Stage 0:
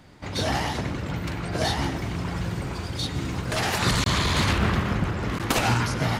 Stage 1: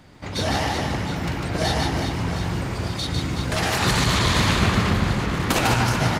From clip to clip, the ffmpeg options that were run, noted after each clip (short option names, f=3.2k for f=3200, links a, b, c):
-af "aecho=1:1:150|375|712.5|1219|1978:0.631|0.398|0.251|0.158|0.1,volume=1.5dB"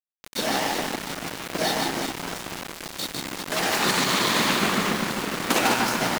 -af "highpass=f=200:w=0.5412,highpass=f=200:w=1.3066,aeval=exprs='val(0)*gte(abs(val(0)),0.0531)':c=same"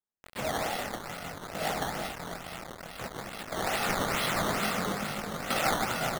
-af "aecho=1:1:1.5:0.62,flanger=delay=19.5:depth=4.8:speed=0.57,acrusher=samples=12:mix=1:aa=0.000001:lfo=1:lforange=12:lforate=2.3,volume=-5dB"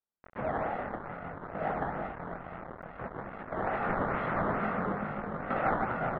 -af "lowpass=f=1.7k:w=0.5412,lowpass=f=1.7k:w=1.3066"